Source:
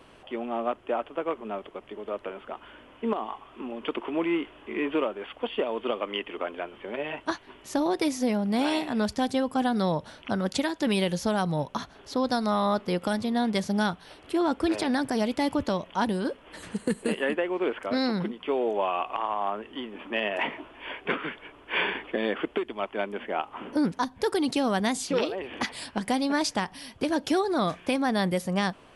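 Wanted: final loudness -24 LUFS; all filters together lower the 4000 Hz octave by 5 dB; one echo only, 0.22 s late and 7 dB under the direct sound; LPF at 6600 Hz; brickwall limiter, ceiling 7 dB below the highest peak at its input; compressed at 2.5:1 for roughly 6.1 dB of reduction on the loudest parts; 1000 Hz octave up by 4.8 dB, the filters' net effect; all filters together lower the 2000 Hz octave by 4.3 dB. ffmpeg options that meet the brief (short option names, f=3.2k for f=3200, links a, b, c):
-af "lowpass=6.6k,equalizer=f=1k:t=o:g=8,equalizer=f=2k:t=o:g=-8,equalizer=f=4k:t=o:g=-3.5,acompressor=threshold=-28dB:ratio=2.5,alimiter=limit=-22.5dB:level=0:latency=1,aecho=1:1:220:0.447,volume=9dB"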